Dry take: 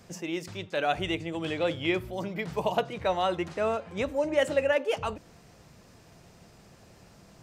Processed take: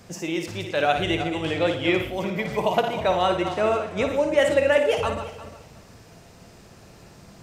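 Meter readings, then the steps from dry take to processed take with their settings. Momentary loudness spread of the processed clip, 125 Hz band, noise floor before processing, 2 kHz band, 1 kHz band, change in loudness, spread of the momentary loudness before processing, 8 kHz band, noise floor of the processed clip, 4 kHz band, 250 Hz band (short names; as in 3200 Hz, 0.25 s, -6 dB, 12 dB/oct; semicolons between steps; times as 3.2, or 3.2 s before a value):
9 LU, +6.5 dB, -56 dBFS, +6.5 dB, +6.5 dB, +6.0 dB, 9 LU, +6.5 dB, -49 dBFS, +6.0 dB, +6.0 dB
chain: regenerating reverse delay 0.177 s, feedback 42%, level -9 dB; flutter echo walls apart 9.7 m, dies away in 0.43 s; gain +5 dB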